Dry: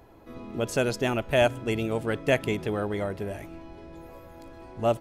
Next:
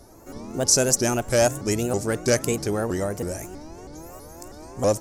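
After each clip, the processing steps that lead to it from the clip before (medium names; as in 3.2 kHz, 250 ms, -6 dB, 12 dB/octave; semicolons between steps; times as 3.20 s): saturation -14.5 dBFS, distortion -20 dB; resonant high shelf 4.5 kHz +11.5 dB, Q 3; vibrato with a chosen wave saw up 3.1 Hz, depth 250 cents; trim +4 dB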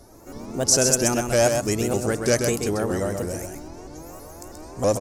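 delay 130 ms -5.5 dB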